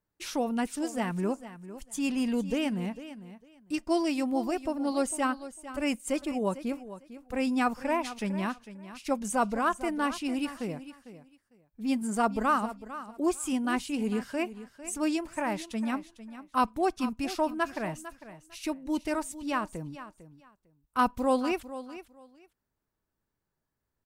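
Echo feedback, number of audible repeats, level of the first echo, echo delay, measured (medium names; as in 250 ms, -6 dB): 19%, 2, -14.0 dB, 451 ms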